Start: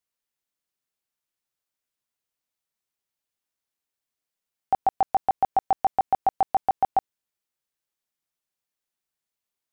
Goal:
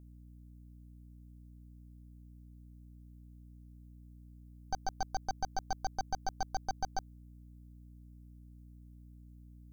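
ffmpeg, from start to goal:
ffmpeg -i in.wav -af "aderivative,aeval=exprs='0.0237*(cos(1*acos(clip(val(0)/0.0237,-1,1)))-cos(1*PI/2))+0.00473*(cos(4*acos(clip(val(0)/0.0237,-1,1)))-cos(4*PI/2))+0.00119*(cos(7*acos(clip(val(0)/0.0237,-1,1)))-cos(7*PI/2))+0.0075*(cos(8*acos(clip(val(0)/0.0237,-1,1)))-cos(8*PI/2))':channel_layout=same,aeval=exprs='val(0)+0.00158*(sin(2*PI*60*n/s)+sin(2*PI*2*60*n/s)/2+sin(2*PI*3*60*n/s)/3+sin(2*PI*4*60*n/s)/4+sin(2*PI*5*60*n/s)/5)':channel_layout=same,volume=3.5dB" out.wav

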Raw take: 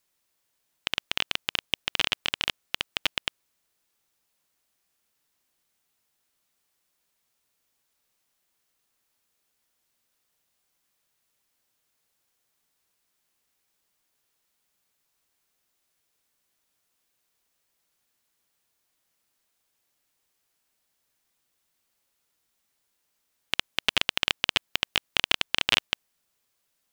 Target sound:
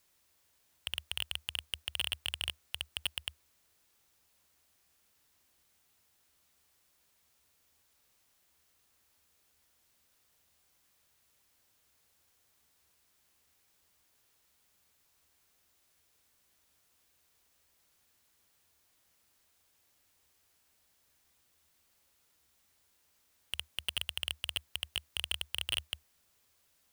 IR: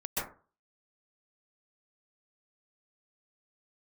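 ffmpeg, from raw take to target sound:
-af "asoftclip=type=tanh:threshold=-13.5dB,equalizer=frequency=75:width_type=o:width=0.54:gain=12.5,asoftclip=type=hard:threshold=-26dB,volume=4dB"

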